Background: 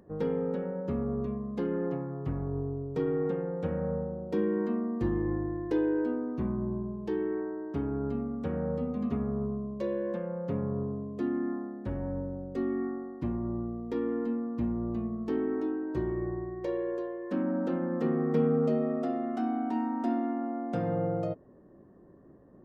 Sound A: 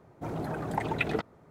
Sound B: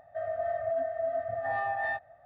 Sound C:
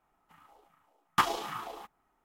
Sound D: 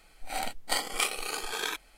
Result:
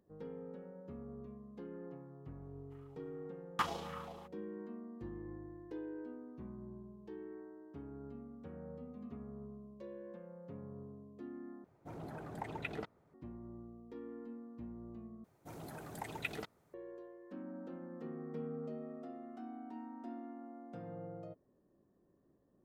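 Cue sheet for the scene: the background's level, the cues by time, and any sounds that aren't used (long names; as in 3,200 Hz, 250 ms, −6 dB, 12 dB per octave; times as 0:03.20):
background −17 dB
0:02.41: mix in C −9 dB + high-shelf EQ 10,000 Hz −8.5 dB
0:11.64: overwrite with A −12.5 dB
0:15.24: overwrite with A −1 dB + first-order pre-emphasis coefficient 0.8
not used: B, D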